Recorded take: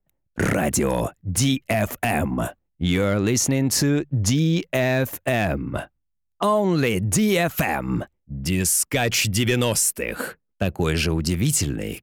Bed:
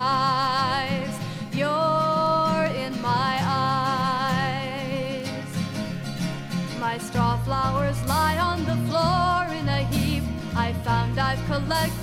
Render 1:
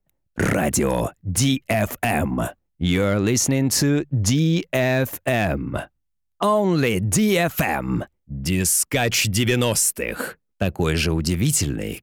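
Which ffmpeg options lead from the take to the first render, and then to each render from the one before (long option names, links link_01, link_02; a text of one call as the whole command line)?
ffmpeg -i in.wav -af "volume=1dB" out.wav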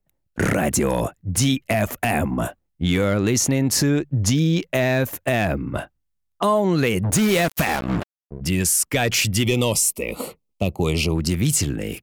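ffmpeg -i in.wav -filter_complex "[0:a]asplit=3[link_01][link_02][link_03];[link_01]afade=type=out:start_time=7.03:duration=0.02[link_04];[link_02]acrusher=bits=3:mix=0:aa=0.5,afade=type=in:start_time=7.03:duration=0.02,afade=type=out:start_time=8.4:duration=0.02[link_05];[link_03]afade=type=in:start_time=8.4:duration=0.02[link_06];[link_04][link_05][link_06]amix=inputs=3:normalize=0,asettb=1/sr,asplit=3[link_07][link_08][link_09];[link_07]atrim=end=9.434[link_10];[link_08]atrim=start=9.43:end=11.15,asetpts=PTS-STARTPTS,afade=type=in:duration=0.004:curve=qsin,afade=type=out:start_time=1.716:duration=0.004:curve=qsin,asuperstop=centerf=1600:order=4:qfactor=1.7[link_11];[link_09]atrim=start=11.146[link_12];[link_10][link_11]acrossfade=duration=0.004:curve1=hsin:curve2=qsin[link_13];[link_13][link_12]acrossfade=duration=0.004:curve1=qsin:curve2=hsin" out.wav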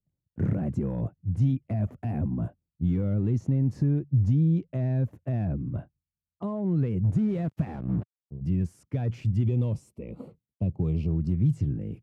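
ffmpeg -i in.wav -af "volume=12.5dB,asoftclip=hard,volume=-12.5dB,bandpass=frequency=120:width_type=q:width=1.4:csg=0" out.wav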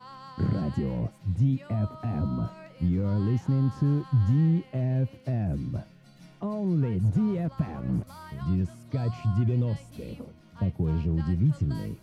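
ffmpeg -i in.wav -i bed.wav -filter_complex "[1:a]volume=-23.5dB[link_01];[0:a][link_01]amix=inputs=2:normalize=0" out.wav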